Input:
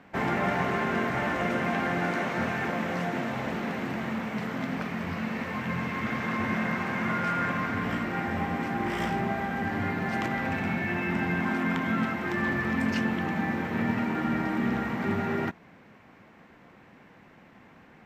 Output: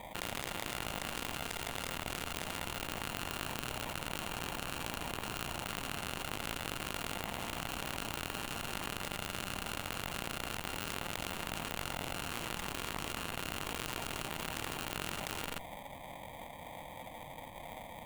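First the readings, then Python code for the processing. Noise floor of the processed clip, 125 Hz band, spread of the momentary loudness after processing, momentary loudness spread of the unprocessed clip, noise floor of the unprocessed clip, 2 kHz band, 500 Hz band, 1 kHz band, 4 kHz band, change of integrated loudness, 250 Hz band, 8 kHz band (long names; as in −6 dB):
−48 dBFS, −12.5 dB, 9 LU, 5 LU, −54 dBFS, −11.0 dB, −11.5 dB, −10.0 dB, +3.5 dB, −10.5 dB, −17.5 dB, +9.5 dB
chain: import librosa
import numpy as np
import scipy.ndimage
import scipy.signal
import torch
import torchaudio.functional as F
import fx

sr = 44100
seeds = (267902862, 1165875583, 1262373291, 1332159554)

p1 = fx.spec_flatten(x, sr, power=0.68)
p2 = fx.cabinet(p1, sr, low_hz=300.0, low_slope=24, high_hz=5900.0, hz=(450.0, 900.0, 1500.0, 2300.0), db=(7, 8, -4, 8))
p3 = fx.sample_hold(p2, sr, seeds[0], rate_hz=1400.0, jitter_pct=0)
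p4 = fx.fixed_phaser(p3, sr, hz=1500.0, stages=6)
p5 = fx.cheby_harmonics(p4, sr, harmonics=(3, 6, 8), levels_db=(-9, -15, -21), full_scale_db=-14.0)
p6 = p5 + fx.echo_single(p5, sr, ms=84, db=-16.5, dry=0)
p7 = fx.env_flatten(p6, sr, amount_pct=100)
y = F.gain(torch.from_numpy(p7), -8.0).numpy()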